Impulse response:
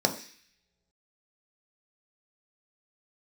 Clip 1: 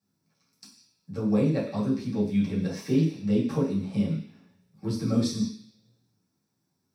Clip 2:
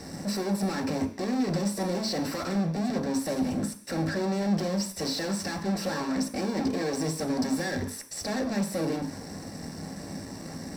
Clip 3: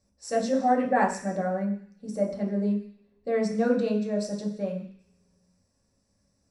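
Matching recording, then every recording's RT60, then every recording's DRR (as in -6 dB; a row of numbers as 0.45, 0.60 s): 2; not exponential, not exponential, not exponential; -10.0, 3.5, -3.0 dB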